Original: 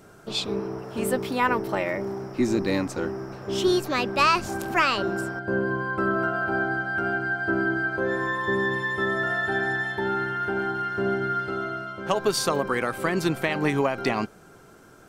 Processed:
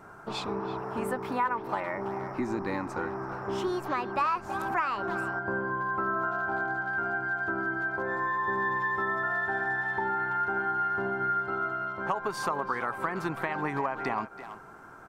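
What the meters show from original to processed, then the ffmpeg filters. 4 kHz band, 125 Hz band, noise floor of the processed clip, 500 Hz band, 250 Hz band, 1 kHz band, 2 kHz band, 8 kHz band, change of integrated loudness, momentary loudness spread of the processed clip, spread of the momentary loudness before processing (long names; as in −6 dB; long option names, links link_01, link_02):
−14.0 dB, −8.5 dB, −48 dBFS, −8.0 dB, −8.5 dB, −1.5 dB, −4.0 dB, below −10 dB, −5.0 dB, 6 LU, 7 LU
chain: -filter_complex "[0:a]firequalizer=gain_entry='entry(560,0);entry(890,12);entry(3200,-7)':delay=0.05:min_phase=1,acompressor=threshold=-27dB:ratio=3,asplit=2[link_01][link_02];[link_02]adelay=330,highpass=300,lowpass=3400,asoftclip=type=hard:threshold=-21.5dB,volume=-11dB[link_03];[link_01][link_03]amix=inputs=2:normalize=0,volume=-2.5dB"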